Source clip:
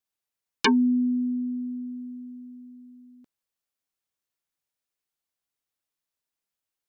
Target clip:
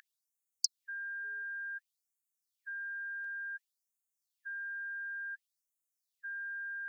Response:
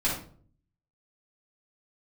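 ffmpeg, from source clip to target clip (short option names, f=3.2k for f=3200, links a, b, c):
-af "aeval=exprs='val(0)+0.0112*sin(2*PI*1600*n/s)':c=same,afftfilt=real='re*gte(b*sr/1024,400*pow(6400/400,0.5+0.5*sin(2*PI*0.56*pts/sr)))':imag='im*gte(b*sr/1024,400*pow(6400/400,0.5+0.5*sin(2*PI*0.56*pts/sr)))':win_size=1024:overlap=0.75,volume=1.5dB"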